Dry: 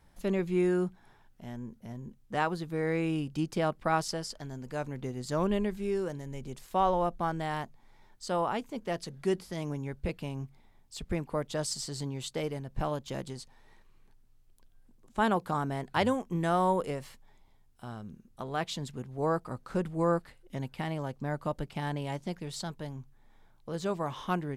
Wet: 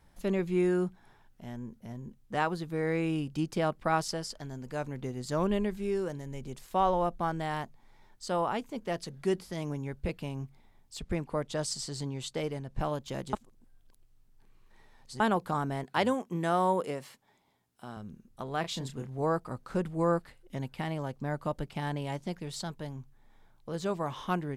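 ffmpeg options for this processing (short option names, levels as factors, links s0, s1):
-filter_complex "[0:a]asettb=1/sr,asplit=3[s0][s1][s2];[s0]atrim=end=10.994[s3];[s1]atrim=start=10.99:end=12.81,asetpts=PTS-STARTPTS,afade=t=in:d=0.004:c=qsin,afade=t=out:st=1.816:d=0.004:c=qsin,lowpass=11000[s4];[s2]atrim=start=12.806[s5];[s3][s4]acrossfade=d=0.004:c1=hsin:c2=qsin[s6];[s6][s5]acrossfade=d=0.004:c1=qsin:c2=hsin,asettb=1/sr,asplit=3[s7][s8][s9];[s7]atrim=end=15.854[s10];[s8]atrim=start=15.85:end=17.97,asetpts=PTS-STARTPTS,afade=t=in:d=0.004:c=qsin,afade=t=out:st=2.116:d=0.004:c=qsin,highpass=160[s11];[s9]atrim=start=17.966[s12];[s10][s11]acrossfade=d=0.004:c1=hsin:c2=qsin[s13];[s13][s12]acrossfade=d=0.004:c1=qsin:c2=hsin,asettb=1/sr,asplit=3[s14][s15][s16];[s14]atrim=end=18.614[s17];[s15]atrim=start=18.61:end=19.22,asetpts=PTS-STARTPTS,afade=t=in:d=0.004:c=qsin,afade=t=out:st=0.606:d=0.004:c=qsin,asplit=2[s18][s19];[s19]adelay=30,volume=0.501[s20];[s18][s20]amix=inputs=2:normalize=0,atrim=end_sample=26901[s21];[s16]atrim=start=19.216[s22];[s17][s21]acrossfade=d=0.004:c1=hsin:c2=qsin[s23];[s23][s22]acrossfade=d=0.004:c1=qsin:c2=hsin,asplit=3[s24][s25][s26];[s24]atrim=end=13.332[s27];[s25]atrim=start=13.328:end=15.202,asetpts=PTS-STARTPTS,areverse[s28];[s26]atrim=start=15.198[s29];[s27][s28]acrossfade=d=0.004:c1=hsin:c2=hsin[s30];[s30][s29]acrossfade=d=0.004:c1=hsin:c2=hsin"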